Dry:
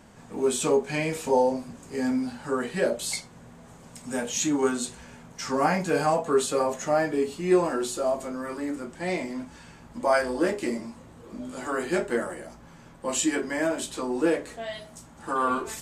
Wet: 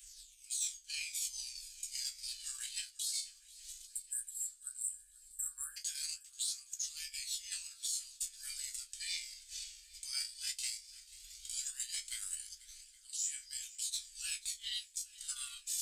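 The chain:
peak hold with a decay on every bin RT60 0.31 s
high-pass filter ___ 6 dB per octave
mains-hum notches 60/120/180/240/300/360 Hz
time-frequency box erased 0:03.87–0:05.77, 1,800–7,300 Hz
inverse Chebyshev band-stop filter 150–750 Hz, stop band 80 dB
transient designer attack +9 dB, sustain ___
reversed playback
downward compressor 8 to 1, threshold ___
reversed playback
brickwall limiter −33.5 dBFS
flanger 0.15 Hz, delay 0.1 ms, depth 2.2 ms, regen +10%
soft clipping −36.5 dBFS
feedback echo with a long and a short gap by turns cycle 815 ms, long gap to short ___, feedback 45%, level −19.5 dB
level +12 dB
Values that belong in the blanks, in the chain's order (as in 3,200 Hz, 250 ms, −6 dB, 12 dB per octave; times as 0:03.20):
76 Hz, −11 dB, −44 dBFS, 1.5 to 1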